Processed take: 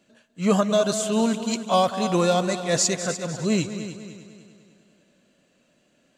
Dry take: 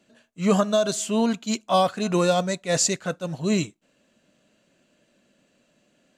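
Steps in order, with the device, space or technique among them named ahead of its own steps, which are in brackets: multi-head tape echo (multi-head delay 100 ms, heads second and third, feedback 47%, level -12.5 dB; wow and flutter 22 cents)

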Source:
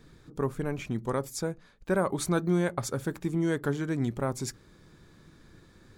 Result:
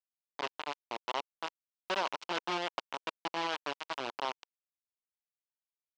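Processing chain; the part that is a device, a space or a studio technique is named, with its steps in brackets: hand-held game console (bit crusher 4-bit; cabinet simulation 460–5200 Hz, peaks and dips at 480 Hz -4 dB, 960 Hz +5 dB, 1.8 kHz -3 dB, 2.9 kHz +5 dB); trim -6 dB

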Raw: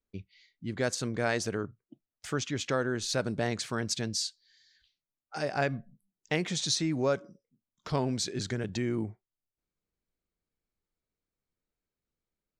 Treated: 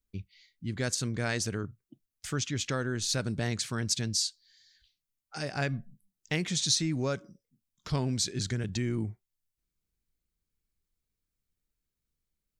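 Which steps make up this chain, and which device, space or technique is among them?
smiley-face EQ (bass shelf 110 Hz +9 dB; peaking EQ 640 Hz -6.5 dB 2 oct; treble shelf 5 kHz +6 dB)

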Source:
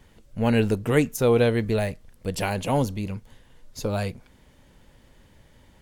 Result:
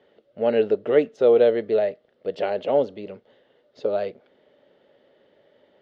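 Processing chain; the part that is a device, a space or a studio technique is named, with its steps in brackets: phone earpiece (cabinet simulation 360–3400 Hz, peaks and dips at 410 Hz +8 dB, 590 Hz +9 dB, 1 kHz -10 dB, 1.6 kHz -4 dB, 2.4 kHz -9 dB)

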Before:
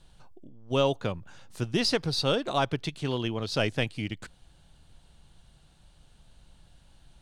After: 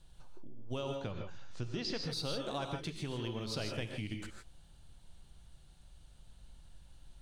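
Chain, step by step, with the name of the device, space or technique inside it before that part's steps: 0.95–2.03 s: low-pass 6.2 kHz 24 dB/octave; ASMR close-microphone chain (bass shelf 110 Hz +6.5 dB; compression 6:1, threshold -29 dBFS, peak gain reduction 10 dB; treble shelf 7.5 kHz +6.5 dB); gated-style reverb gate 180 ms rising, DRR 3 dB; trim -7 dB

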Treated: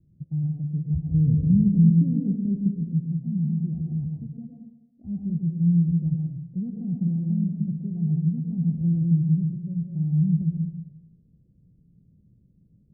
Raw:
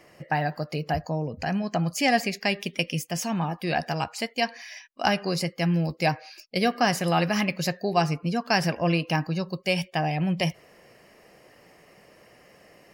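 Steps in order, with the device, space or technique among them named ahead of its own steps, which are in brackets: 1.14–2.74 s: resonant low shelf 640 Hz +9.5 dB, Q 3; club heard from the street (peak limiter -13 dBFS, peak gain reduction 8.5 dB; low-pass 170 Hz 24 dB/octave; reverberation RT60 1.0 s, pre-delay 103 ms, DRR 0 dB); trim +6.5 dB

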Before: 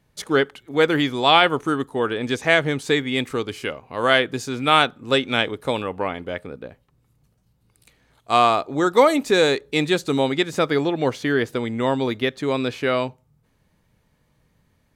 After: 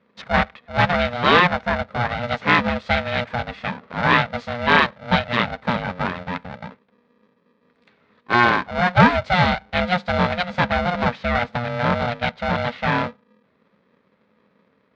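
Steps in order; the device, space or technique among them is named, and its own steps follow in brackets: ring modulator pedal into a guitar cabinet (polarity switched at an audio rate 360 Hz; cabinet simulation 92–3500 Hz, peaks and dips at 110 Hz -4 dB, 200 Hz +6 dB, 330 Hz -9 dB, 800 Hz -4 dB, 2.9 kHz -7 dB); trim +2.5 dB

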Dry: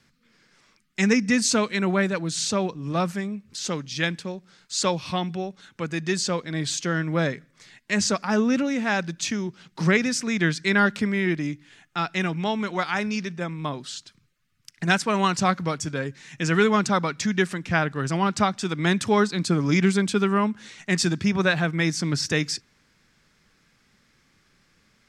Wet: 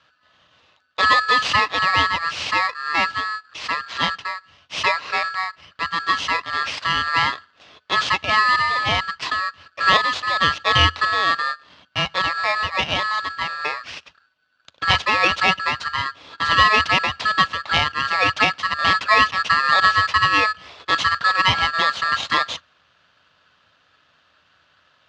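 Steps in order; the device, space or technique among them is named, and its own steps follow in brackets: ring modulator pedal into a guitar cabinet (polarity switched at an audio rate 1.5 kHz; cabinet simulation 76–4600 Hz, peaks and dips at 81 Hz +6 dB, 220 Hz -5 dB, 370 Hz -7 dB, 590 Hz +3 dB, 1.1 kHz +5 dB, 2.7 kHz +4 dB); trim +3 dB

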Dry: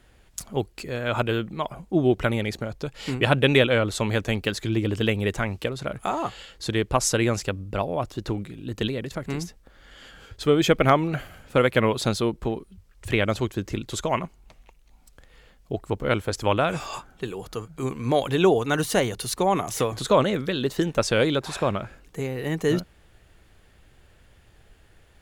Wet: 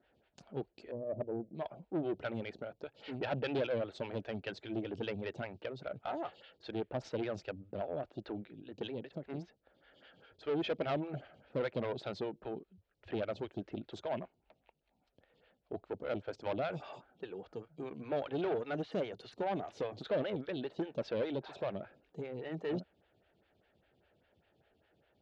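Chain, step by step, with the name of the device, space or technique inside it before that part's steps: 0.91–1.55 s: elliptic low-pass 630 Hz, stop band 40 dB; vibe pedal into a guitar amplifier (lamp-driven phase shifter 5 Hz; valve stage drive 22 dB, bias 0.4; cabinet simulation 100–4100 Hz, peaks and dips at 630 Hz +4 dB, 1.1 kHz -9 dB, 2 kHz -4 dB); trim -7.5 dB

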